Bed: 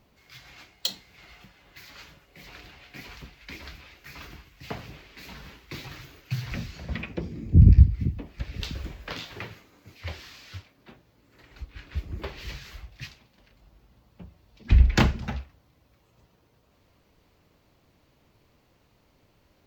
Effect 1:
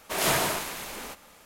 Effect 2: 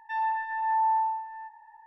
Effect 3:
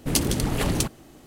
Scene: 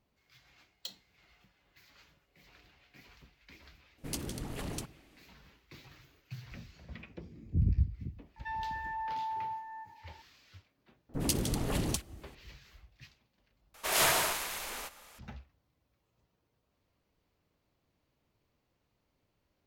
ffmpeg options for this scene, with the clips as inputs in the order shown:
-filter_complex "[3:a]asplit=2[a][b];[0:a]volume=-14.5dB[c];[2:a]acompressor=threshold=-31dB:ratio=6:attack=3.2:release=140:knee=1:detection=peak[d];[b]acrossover=split=1700[e][f];[f]adelay=50[g];[e][g]amix=inputs=2:normalize=0[h];[1:a]equalizer=f=210:w=0.56:g=-10[i];[c]asplit=2[j][k];[j]atrim=end=13.744[l];[i]atrim=end=1.45,asetpts=PTS-STARTPTS,volume=-1dB[m];[k]atrim=start=15.186[n];[a]atrim=end=1.26,asetpts=PTS-STARTPTS,volume=-15.5dB,afade=t=in:d=0.004:c=hsin,afade=t=out:st=1.256:d=0.004:c=hsin,adelay=3980[o];[d]atrim=end=1.86,asetpts=PTS-STARTPTS,volume=-4dB,afade=t=in:d=0.004:c=hsin,afade=t=out:st=1.856:d=0.004:c=hsin,adelay=8360[p];[h]atrim=end=1.26,asetpts=PTS-STARTPTS,volume=-8dB,afade=t=in:d=0.004:c=hsin,afade=t=out:st=1.256:d=0.004:c=hsin,adelay=11090[q];[l][m]acrossfade=d=0.004:c1=hsin:c2=hsin[r];[r][n]acrossfade=d=0.004:c1=hsin:c2=hsin[s];[s][o][p][q]amix=inputs=4:normalize=0"

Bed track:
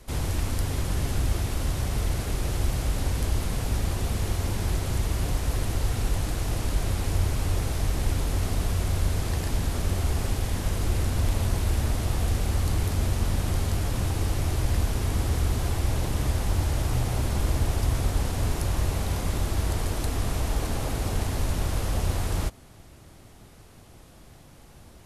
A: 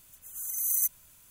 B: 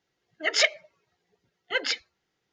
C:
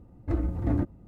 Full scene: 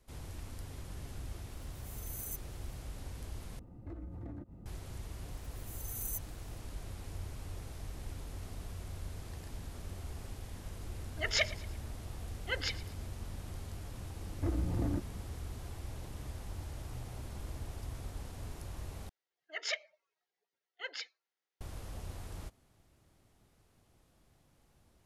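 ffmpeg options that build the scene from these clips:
-filter_complex "[1:a]asplit=2[a][b];[3:a]asplit=2[c][d];[2:a]asplit=2[e][f];[0:a]volume=-18dB[g];[c]acompressor=threshold=-42dB:ratio=6:attack=3.2:release=140:knee=1:detection=peak[h];[e]aecho=1:1:113|226|339:0.133|0.056|0.0235[i];[d]acompressor=threshold=-29dB:ratio=6:attack=3.2:release=140:knee=1:detection=peak[j];[f]highpass=510[k];[g]asplit=3[l][m][n];[l]atrim=end=3.594[o];[h]atrim=end=1.07,asetpts=PTS-STARTPTS,volume=-0.5dB[p];[m]atrim=start=4.656:end=19.094[q];[k]atrim=end=2.52,asetpts=PTS-STARTPTS,volume=-14.5dB[r];[n]atrim=start=21.606[s];[a]atrim=end=1.3,asetpts=PTS-STARTPTS,volume=-16.5dB,afade=t=in:d=0.004:c=hsin,afade=t=out:st=1.296:d=0.004:c=hsin,adelay=1490[t];[b]atrim=end=1.3,asetpts=PTS-STARTPTS,volume=-13.5dB,afade=t=in:d=0.004:c=hsin,afade=t=out:st=1.296:d=0.004:c=hsin,adelay=5310[u];[i]atrim=end=2.52,asetpts=PTS-STARTPTS,volume=-9dB,afade=t=in:d=0.004:c=hsin,afade=t=out:st=2.516:d=0.004:c=hsin,adelay=10770[v];[j]atrim=end=1.07,asetpts=PTS-STARTPTS,afade=t=in:d=0.004:c=hsin,afade=t=out:st=1.066:d=0.004:c=hsin,adelay=14150[w];[o][p]acrossfade=d=0.004:c1=hsin:c2=hsin[x];[x][q]acrossfade=d=0.004:c1=hsin:c2=hsin[y];[y][r]acrossfade=d=0.004:c1=hsin:c2=hsin[z];[z][s]acrossfade=d=0.004:c1=hsin:c2=hsin[aa];[aa][t][u][v][w]amix=inputs=5:normalize=0"

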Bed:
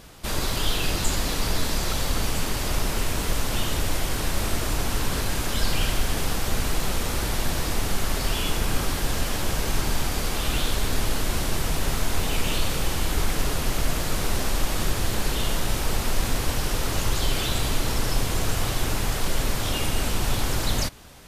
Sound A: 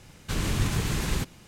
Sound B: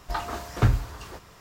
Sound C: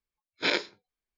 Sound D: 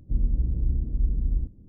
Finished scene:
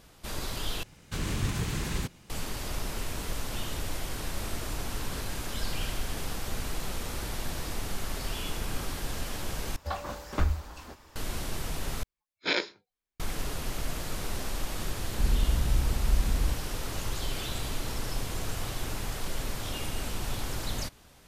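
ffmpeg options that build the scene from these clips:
-filter_complex "[0:a]volume=-9dB[a];[2:a]afreqshift=-120[b];[a]asplit=4[c][d][e][f];[c]atrim=end=0.834[g];[1:a]atrim=end=1.47,asetpts=PTS-STARTPTS,volume=-4dB[h];[d]atrim=start=2.296:end=9.764[i];[b]atrim=end=1.4,asetpts=PTS-STARTPTS,volume=-4dB[j];[e]atrim=start=11.156:end=12.034[k];[3:a]atrim=end=1.17,asetpts=PTS-STARTPTS,volume=-1.5dB[l];[f]atrim=start=13.196[m];[4:a]atrim=end=1.68,asetpts=PTS-STARTPTS,volume=-2dB,afade=t=in:d=0.004:c=hsin,afade=t=out:st=1.676:d=0.004:c=hsin,adelay=15090[n];[g][h]acrossfade=d=0.004:c1=hsin:c2=hsin[o];[o][i]acrossfade=d=0.004:c1=hsin:c2=hsin[p];[p][j]acrossfade=d=0.004:c1=hsin:c2=hsin[q];[q][k]acrossfade=d=0.004:c1=hsin:c2=hsin[r];[r][l]acrossfade=d=0.004:c1=hsin:c2=hsin[s];[s][m]acrossfade=d=0.004:c1=hsin:c2=hsin[t];[t][n]amix=inputs=2:normalize=0"

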